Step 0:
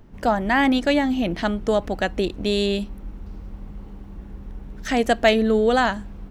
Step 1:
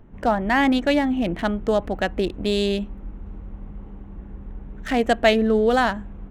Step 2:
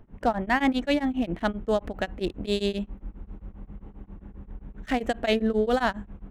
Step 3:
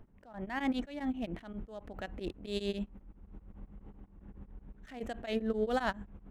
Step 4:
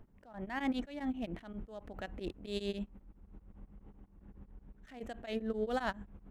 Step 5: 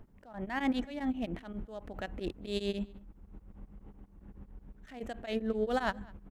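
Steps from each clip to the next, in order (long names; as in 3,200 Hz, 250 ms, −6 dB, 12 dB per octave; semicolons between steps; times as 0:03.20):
adaptive Wiener filter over 9 samples
tremolo along a rectified sine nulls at 7.5 Hz; level −2 dB
level that may rise only so fast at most 110 dB per second; level −4 dB
speech leveller within 3 dB 2 s; level −3 dB
slap from a distant wall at 35 metres, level −24 dB; level +3.5 dB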